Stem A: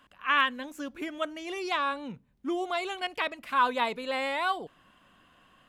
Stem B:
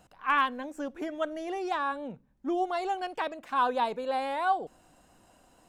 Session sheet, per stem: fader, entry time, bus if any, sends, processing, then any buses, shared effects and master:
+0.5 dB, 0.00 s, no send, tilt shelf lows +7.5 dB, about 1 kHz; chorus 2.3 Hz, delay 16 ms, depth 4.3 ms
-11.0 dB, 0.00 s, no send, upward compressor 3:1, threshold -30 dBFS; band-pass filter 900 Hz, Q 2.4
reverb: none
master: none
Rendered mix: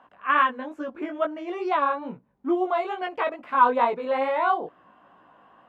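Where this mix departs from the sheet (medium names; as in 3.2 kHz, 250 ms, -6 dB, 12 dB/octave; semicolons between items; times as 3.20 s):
stem A +0.5 dB -> +10.5 dB; master: extra band-pass filter 980 Hz, Q 0.89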